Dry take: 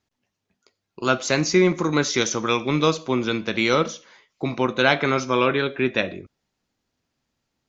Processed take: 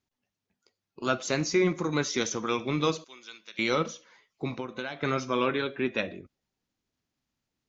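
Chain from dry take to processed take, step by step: coarse spectral quantiser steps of 15 dB; 3.04–3.59 s: differentiator; 4.52–5.03 s: compression 12:1, threshold -25 dBFS, peak gain reduction 13.5 dB; trim -6.5 dB

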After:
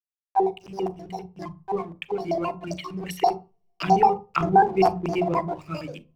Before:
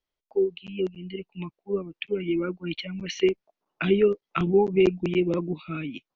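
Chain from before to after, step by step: pitch shift switched off and on +11.5 st, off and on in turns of 66 ms; gate with hold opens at -38 dBFS; fifteen-band graphic EQ 100 Hz -10 dB, 250 Hz -8 dB, 1 kHz +10 dB, 4 kHz -8 dB; hysteresis with a dead band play -45 dBFS; on a send: reverberation RT60 0.30 s, pre-delay 33 ms, DRR 13.5 dB

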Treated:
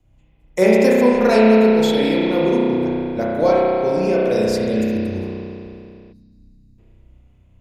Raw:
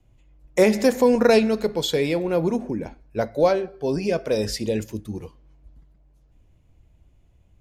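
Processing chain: spring tank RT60 2.8 s, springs 32 ms, chirp 70 ms, DRR -6 dB; time-frequency box 6.13–6.79 s, 320–3700 Hz -19 dB; trim -1.5 dB

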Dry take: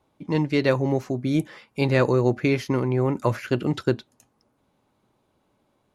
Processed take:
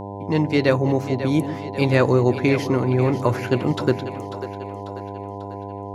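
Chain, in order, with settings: mains buzz 100 Hz, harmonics 10, -35 dBFS -2 dB/octave; two-band feedback delay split 350 Hz, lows 141 ms, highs 543 ms, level -11.5 dB; trim +2.5 dB

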